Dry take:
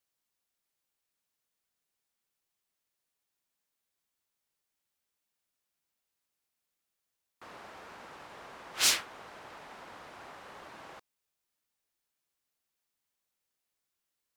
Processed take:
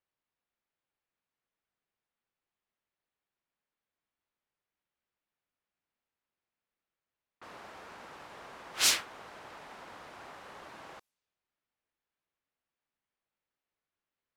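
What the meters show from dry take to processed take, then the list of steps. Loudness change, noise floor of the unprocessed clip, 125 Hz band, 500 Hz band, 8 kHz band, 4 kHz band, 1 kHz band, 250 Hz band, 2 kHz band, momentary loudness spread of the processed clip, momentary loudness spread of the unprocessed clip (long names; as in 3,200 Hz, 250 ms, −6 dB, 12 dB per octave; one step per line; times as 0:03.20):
0.0 dB, below −85 dBFS, 0.0 dB, 0.0 dB, 0.0 dB, 0.0 dB, 0.0 dB, 0.0 dB, 0.0 dB, 20 LU, 20 LU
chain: low-pass that shuts in the quiet parts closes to 2,400 Hz, open at −50 dBFS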